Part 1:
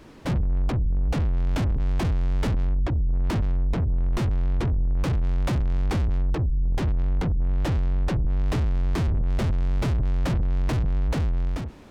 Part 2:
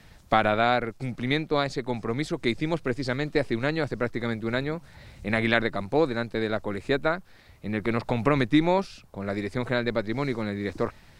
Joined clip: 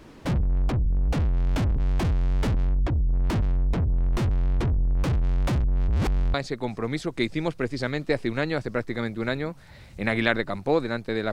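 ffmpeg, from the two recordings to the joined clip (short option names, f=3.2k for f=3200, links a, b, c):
-filter_complex "[0:a]apad=whole_dur=11.32,atrim=end=11.32,asplit=2[a][b];[a]atrim=end=5.642[c];[b]atrim=start=5.638:end=6.342,asetpts=PTS-STARTPTS,areverse[d];[1:a]atrim=start=1.598:end=6.58[e];[c][d]acrossfade=d=0.004:c1=hsin:c2=hsin[f];[f][e]acrossfade=d=0.004:c1=hsin:c2=hsin"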